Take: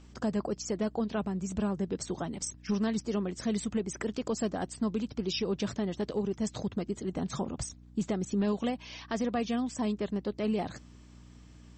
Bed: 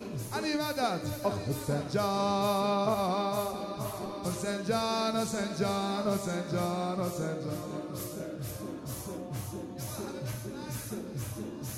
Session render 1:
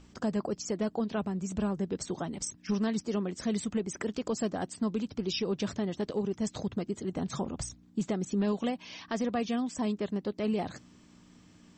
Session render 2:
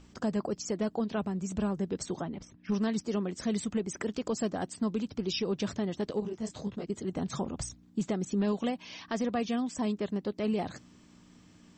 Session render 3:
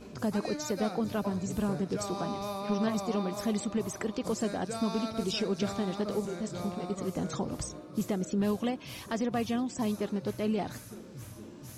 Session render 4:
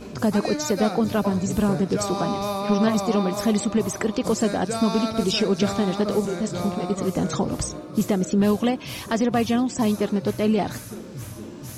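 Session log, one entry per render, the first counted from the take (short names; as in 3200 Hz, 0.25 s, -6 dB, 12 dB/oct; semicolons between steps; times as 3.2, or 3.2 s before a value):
de-hum 60 Hz, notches 2
2.21–2.72 air absorption 280 m; 6.2–6.9 detuned doubles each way 54 cents
add bed -8 dB
gain +9.5 dB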